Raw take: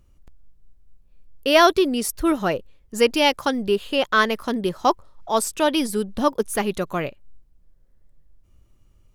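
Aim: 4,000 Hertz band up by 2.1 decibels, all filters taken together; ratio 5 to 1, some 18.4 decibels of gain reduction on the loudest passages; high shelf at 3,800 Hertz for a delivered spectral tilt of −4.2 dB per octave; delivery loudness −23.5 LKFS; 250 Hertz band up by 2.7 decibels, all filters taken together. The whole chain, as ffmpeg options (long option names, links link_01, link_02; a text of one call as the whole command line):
ffmpeg -i in.wav -af "equalizer=frequency=250:width_type=o:gain=3.5,highshelf=frequency=3800:gain=-6.5,equalizer=frequency=4000:width_type=o:gain=7,acompressor=threshold=-31dB:ratio=5,volume=11dB" out.wav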